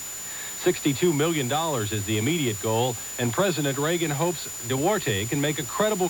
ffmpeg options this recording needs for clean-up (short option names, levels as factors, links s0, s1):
-af "bandreject=f=7000:w=30,afwtdn=0.011"